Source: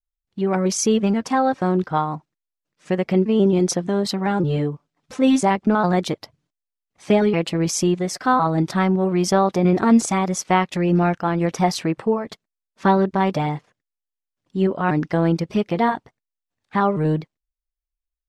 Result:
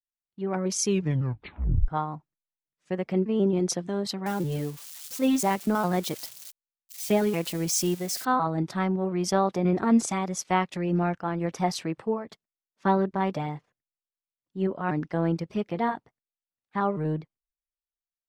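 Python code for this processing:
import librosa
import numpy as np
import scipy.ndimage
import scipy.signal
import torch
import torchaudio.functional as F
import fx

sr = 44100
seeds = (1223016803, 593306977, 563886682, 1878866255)

y = fx.crossing_spikes(x, sr, level_db=-22.0, at=(4.26, 8.25))
y = fx.edit(y, sr, fx.tape_stop(start_s=0.82, length_s=1.06), tone=tone)
y = fx.band_widen(y, sr, depth_pct=40)
y = y * 10.0 ** (-7.5 / 20.0)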